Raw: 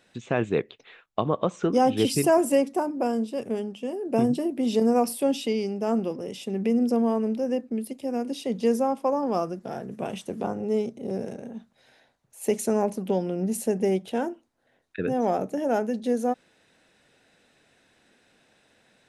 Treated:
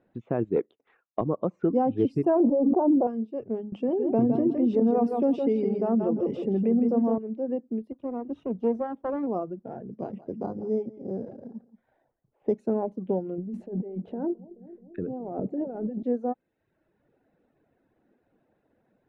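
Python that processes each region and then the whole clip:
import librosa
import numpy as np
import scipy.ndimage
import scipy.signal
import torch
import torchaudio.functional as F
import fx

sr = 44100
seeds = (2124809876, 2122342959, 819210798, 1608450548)

y = fx.chain(x, sr, fx.highpass(hz=210.0, slope=12),
    fx.leveller(passes=1), at=(0.56, 1.21))
y = fx.chain(y, sr, fx.lowpass(hz=1000.0, slope=24),
    fx.low_shelf(hz=300.0, db=-6.0),
    fx.env_flatten(amount_pct=100), at=(2.4, 3.07))
y = fx.chain(y, sr, fx.high_shelf(hz=3900.0, db=5.0),
    fx.echo_feedback(ms=162, feedback_pct=28, wet_db=-5.0),
    fx.env_flatten(amount_pct=50), at=(3.72, 7.18))
y = fx.chain(y, sr, fx.lower_of_two(delay_ms=0.32),
    fx.highpass(hz=59.0, slope=12), at=(7.92, 9.27))
y = fx.chain(y, sr, fx.echo_single(ms=172, db=-10.5),
    fx.resample_bad(factor=8, down='filtered', up='hold'), at=(9.92, 12.58))
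y = fx.chain(y, sr, fx.tilt_shelf(db=4.0, hz=640.0),
    fx.over_compress(threshold_db=-30.0, ratio=-1.0),
    fx.echo_bbd(ms=214, stages=1024, feedback_pct=63, wet_db=-13.0), at=(13.38, 16.03))
y = fx.dereverb_blind(y, sr, rt60_s=0.79)
y = scipy.signal.sosfilt(scipy.signal.bessel(2, 690.0, 'lowpass', norm='mag', fs=sr, output='sos'), y)
y = fx.peak_eq(y, sr, hz=320.0, db=3.5, octaves=0.44)
y = F.gain(torch.from_numpy(y), -1.0).numpy()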